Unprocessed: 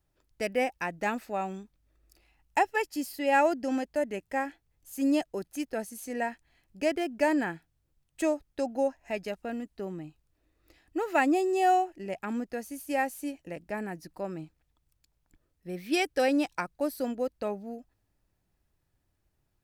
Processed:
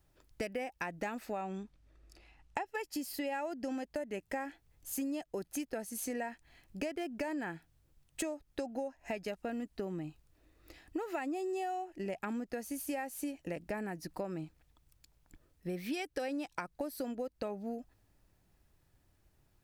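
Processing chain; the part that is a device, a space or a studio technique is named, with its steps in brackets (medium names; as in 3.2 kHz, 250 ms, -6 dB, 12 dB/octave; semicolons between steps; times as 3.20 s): 1.41–2.66 s: distance through air 56 m; serial compression, leveller first (compression 2.5:1, threshold -29 dBFS, peak gain reduction 7 dB; compression 6:1, threshold -41 dBFS, peak gain reduction 14.5 dB); trim +5.5 dB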